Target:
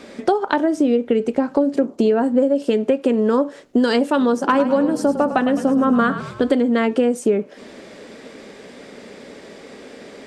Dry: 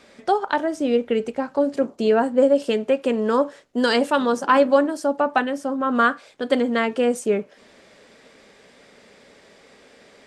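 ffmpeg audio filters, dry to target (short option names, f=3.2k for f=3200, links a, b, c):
-filter_complex "[0:a]equalizer=f=290:w=0.79:g=8.5,acompressor=threshold=-22dB:ratio=6,asettb=1/sr,asplit=3[a][b][c];[a]atrim=end=4.394[d];[b]atrim=start=4.39:end=6.51,asetpts=PTS-STARTPTS,afade=t=in:d=0.004:c=qsin,afade=t=out:st=2.116:d=0.004:c=qsin,asplit=7[e][f][g][h][i][j][k];[f]adelay=105,afreqshift=-35,volume=-11dB[l];[g]adelay=210,afreqshift=-70,volume=-16.7dB[m];[h]adelay=315,afreqshift=-105,volume=-22.4dB[n];[i]adelay=420,afreqshift=-140,volume=-28dB[o];[j]adelay=525,afreqshift=-175,volume=-33.7dB[p];[k]adelay=630,afreqshift=-210,volume=-39.4dB[q];[e][l][m][n][o][p][q]amix=inputs=7:normalize=0,atrim=end_sample=93492[r];[c]atrim=start=6.506[s];[d][r]acrossfade=d=0.004:c1=hsin:c2=qsin[t];[t][s]acrossfade=d=0.004:c1=qsin:c2=hsin,volume=7.5dB"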